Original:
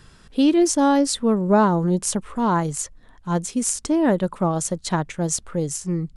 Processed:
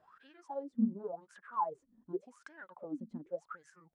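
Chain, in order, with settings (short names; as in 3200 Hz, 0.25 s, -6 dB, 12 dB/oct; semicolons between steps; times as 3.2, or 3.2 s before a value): compressor 6:1, threshold -30 dBFS, peak gain reduction 17 dB; wah 0.57 Hz 220–1700 Hz, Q 22; granular stretch 0.64×, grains 88 ms; gain +10.5 dB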